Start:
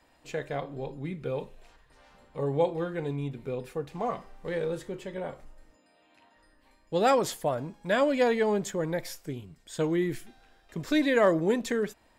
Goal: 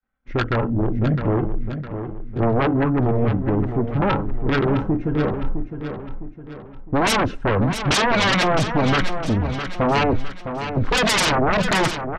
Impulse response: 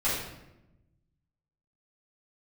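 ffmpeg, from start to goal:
-filter_complex "[0:a]agate=range=-33dB:threshold=-50dB:ratio=3:detection=peak,afwtdn=0.0112,lowpass=frequency=1800:width_type=q:width=1.6,equalizer=frequency=720:width_type=o:width=2.5:gain=-15,aecho=1:1:3.1:0.36,aeval=exprs='0.119*sin(PI/2*8.91*val(0)/0.119)':channel_layout=same,asetrate=36028,aresample=44100,atempo=1.22405,asplit=2[link_01][link_02];[link_02]aecho=0:1:659|1318|1977|2636|3295:0.355|0.153|0.0656|0.0282|0.0121[link_03];[link_01][link_03]amix=inputs=2:normalize=0,volume=3.5dB"

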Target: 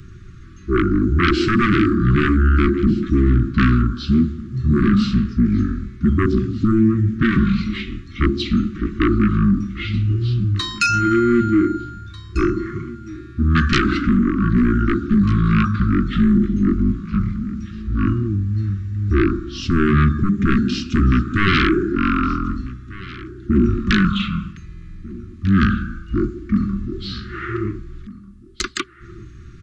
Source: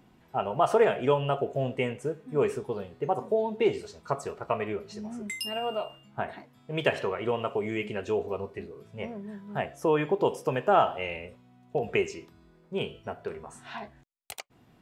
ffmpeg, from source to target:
ffmpeg -i in.wav -af "lowshelf=frequency=93:gain=12,aeval=exprs='0.355*sin(PI/2*5.62*val(0)/0.355)':channel_layout=same,aecho=1:1:772:0.112,asetrate=22050,aresample=44100,asuperstop=centerf=660:order=20:qfactor=0.88,volume=-1dB" out.wav

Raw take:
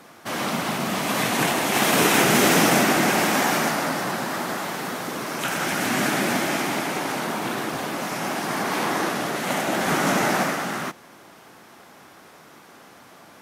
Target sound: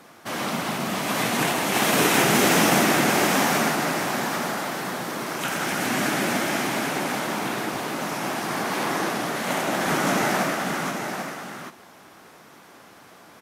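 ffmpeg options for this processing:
ffmpeg -i in.wav -af "aecho=1:1:790:0.447,volume=-1.5dB" out.wav

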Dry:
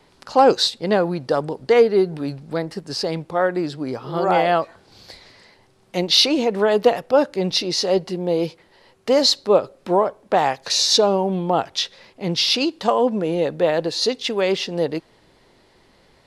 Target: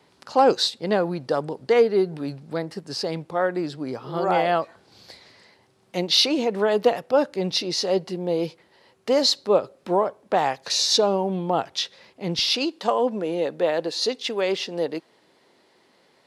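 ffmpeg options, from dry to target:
ffmpeg -i in.wav -af "asetnsamples=nb_out_samples=441:pad=0,asendcmd='12.39 highpass f 220',highpass=94,volume=-3.5dB" out.wav

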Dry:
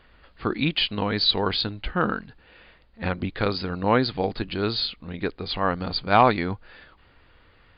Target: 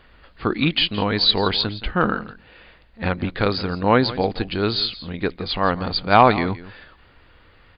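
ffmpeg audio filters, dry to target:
ffmpeg -i in.wav -af "aecho=1:1:169:0.15,volume=4dB" out.wav

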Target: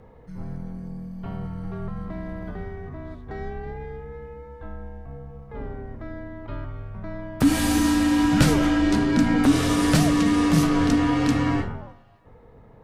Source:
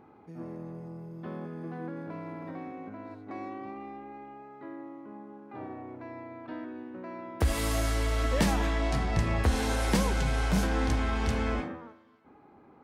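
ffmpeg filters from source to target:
ffmpeg -i in.wav -af "bandreject=frequency=88.04:width_type=h:width=4,bandreject=frequency=176.08:width_type=h:width=4,bandreject=frequency=264.12:width_type=h:width=4,bandreject=frequency=352.16:width_type=h:width=4,bandreject=frequency=440.2:width_type=h:width=4,bandreject=frequency=528.24:width_type=h:width=4,afreqshift=-350,volume=7.5dB" out.wav

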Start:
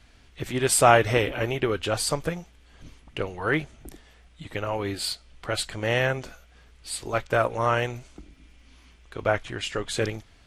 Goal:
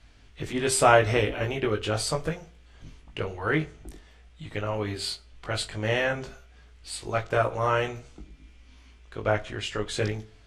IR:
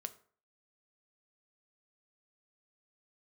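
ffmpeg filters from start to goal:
-filter_complex "[0:a]lowpass=9100,asplit=2[link_01][link_02];[1:a]atrim=start_sample=2205,lowshelf=frequency=140:gain=7.5,adelay=19[link_03];[link_02][link_03]afir=irnorm=-1:irlink=0,volume=-1.5dB[link_04];[link_01][link_04]amix=inputs=2:normalize=0,volume=-3dB"

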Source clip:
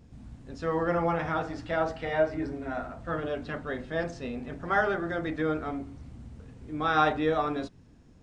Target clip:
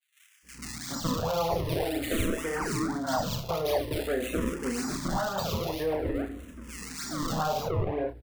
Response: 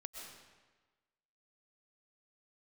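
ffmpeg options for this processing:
-filter_complex "[0:a]asplit=2[link_01][link_02];[link_02]highpass=frequency=720:poles=1,volume=20dB,asoftclip=type=tanh:threshold=-10.5dB[link_03];[link_01][link_03]amix=inputs=2:normalize=0,lowpass=frequency=2300:poles=1,volume=-6dB,acrossover=split=680[link_04][link_05];[link_04]alimiter=level_in=1.5dB:limit=-24dB:level=0:latency=1,volume=-1.5dB[link_06];[link_05]acompressor=threshold=-32dB:ratio=6[link_07];[link_06][link_07]amix=inputs=2:normalize=0,acrusher=samples=33:mix=1:aa=0.000001:lfo=1:lforange=52.8:lforate=1.8,aeval=exprs='val(0)+0.00398*(sin(2*PI*60*n/s)+sin(2*PI*2*60*n/s)/2+sin(2*PI*3*60*n/s)/3+sin(2*PI*4*60*n/s)/4+sin(2*PI*5*60*n/s)/5)':channel_layout=same,agate=range=-33dB:threshold=-39dB:ratio=3:detection=peak,asplit=2[link_08][link_09];[link_09]adelay=31,volume=-9.5dB[link_10];[link_08][link_10]amix=inputs=2:normalize=0,acrossover=split=2000[link_11][link_12];[link_11]adelay=420[link_13];[link_13][link_12]amix=inputs=2:normalize=0,asplit=2[link_14][link_15];[link_15]afreqshift=-0.48[link_16];[link_14][link_16]amix=inputs=2:normalize=1,volume=3dB"

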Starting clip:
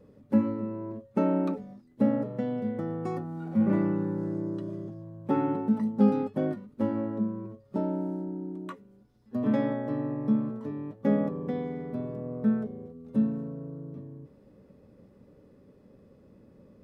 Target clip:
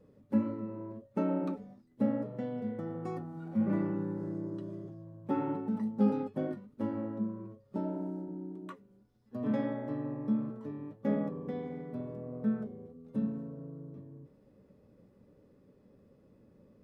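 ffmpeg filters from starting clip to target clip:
ffmpeg -i in.wav -af "flanger=delay=6.2:depth=4.2:regen=-70:speed=1.6:shape=sinusoidal,volume=-1.5dB" out.wav

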